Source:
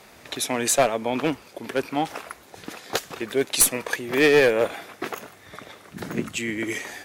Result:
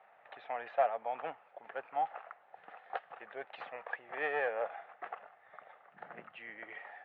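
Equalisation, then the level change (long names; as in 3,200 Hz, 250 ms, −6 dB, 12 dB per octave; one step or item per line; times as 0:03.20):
high-frequency loss of the air 410 metres
loudspeaker in its box 240–2,500 Hz, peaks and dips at 250 Hz −8 dB, 640 Hz −6 dB, 1,000 Hz −9 dB, 1,500 Hz −3 dB, 2,300 Hz −7 dB
low shelf with overshoot 500 Hz −12.5 dB, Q 3
−7.0 dB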